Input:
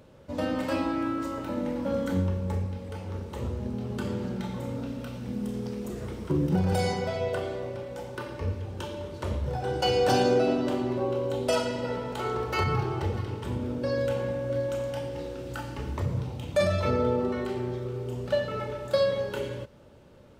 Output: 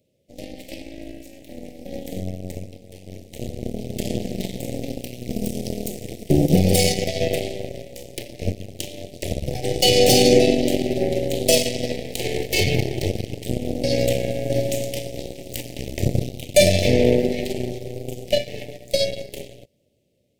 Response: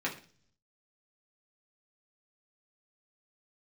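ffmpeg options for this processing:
-filter_complex "[0:a]highpass=78,asplit=2[a][b];[b]asetrate=52444,aresample=44100,atempo=0.840896,volume=-18dB[c];[a][c]amix=inputs=2:normalize=0,asplit=2[d][e];[e]alimiter=limit=-23dB:level=0:latency=1:release=142,volume=-1.5dB[f];[d][f]amix=inputs=2:normalize=0,crystalizer=i=2:c=0,dynaudnorm=f=950:g=7:m=11.5dB,aeval=exprs='0.891*(cos(1*acos(clip(val(0)/0.891,-1,1)))-cos(1*PI/2))+0.0631*(cos(5*acos(clip(val(0)/0.891,-1,1)))-cos(5*PI/2))+0.158*(cos(7*acos(clip(val(0)/0.891,-1,1)))-cos(7*PI/2))+0.0562*(cos(8*acos(clip(val(0)/0.891,-1,1)))-cos(8*PI/2))':c=same,asuperstop=centerf=1200:order=8:qfactor=0.87,volume=-1dB"

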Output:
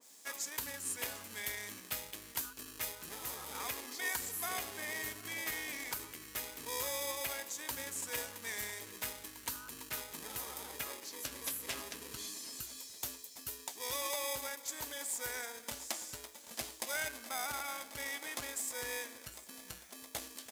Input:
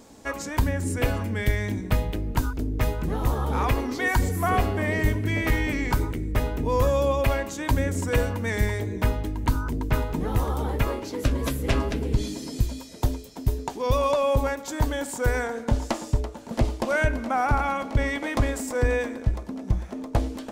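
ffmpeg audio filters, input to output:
-filter_complex "[0:a]asplit=2[a][b];[b]acrusher=samples=31:mix=1:aa=0.000001,volume=-4.5dB[c];[a][c]amix=inputs=2:normalize=0,aresample=32000,aresample=44100,acrusher=bits=10:mix=0:aa=0.000001,aderivative,asplit=2[d][e];[e]aecho=0:1:754:0.0891[f];[d][f]amix=inputs=2:normalize=0,adynamicequalizer=threshold=0.00316:dfrequency=2100:dqfactor=0.7:tfrequency=2100:tqfactor=0.7:attack=5:release=100:ratio=0.375:range=1.5:mode=cutabove:tftype=highshelf"

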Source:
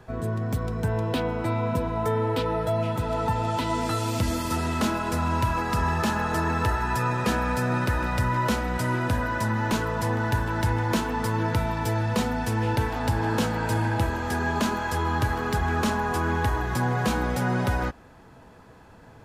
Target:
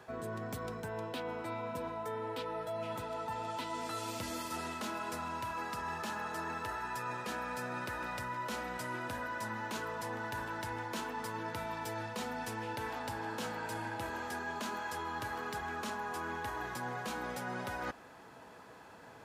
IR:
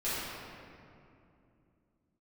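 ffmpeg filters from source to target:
-af "highpass=f=480:p=1,areverse,acompressor=threshold=-37dB:ratio=6,areverse"

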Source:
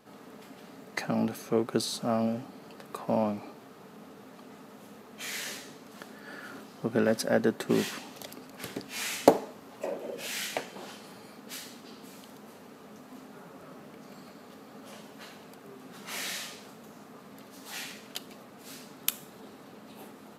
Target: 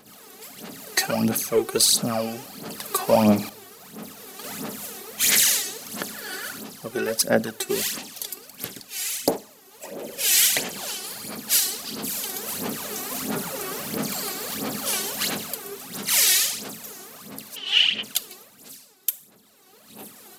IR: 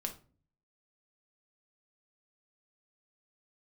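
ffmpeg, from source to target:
-filter_complex "[0:a]crystalizer=i=6.5:c=0,asettb=1/sr,asplit=3[a][b][c];[a]atrim=end=3.494[d];[b]atrim=start=3.49:end=4.44,asetpts=PTS-STARTPTS,afade=t=in:d=0.004:c=qsin,afade=t=out:st=0.946:d=0.004:c=qsin,agate=range=-33dB:threshold=-38dB:ratio=3:detection=peak[e];[c]atrim=start=4.436[f];[d][e]acrossfade=d=0.004:c1=hsin:c2=qsin[g];[g][f]acrossfade=d=0.004:c1=qsin:c2=hsin,aphaser=in_gain=1:out_gain=1:delay=2.7:decay=0.69:speed=1.5:type=sinusoidal,asplit=3[h][i][j];[h]afade=t=out:st=17.55:d=0.02[k];[i]lowpass=f=3k:t=q:w=14,afade=t=in:st=17.55:d=0.02,afade=t=out:st=18.02:d=0.02[l];[j]afade=t=in:st=18.02:d=0.02[m];[k][l][m]amix=inputs=3:normalize=0,asplit=2[n][o];[1:a]atrim=start_sample=2205,lowpass=f=1.3k:w=0.5412,lowpass=f=1.3k:w=1.3066[p];[o][p]afir=irnorm=-1:irlink=0,volume=-15dB[q];[n][q]amix=inputs=2:normalize=0,dynaudnorm=f=110:g=13:m=15dB,volume=-4.5dB"

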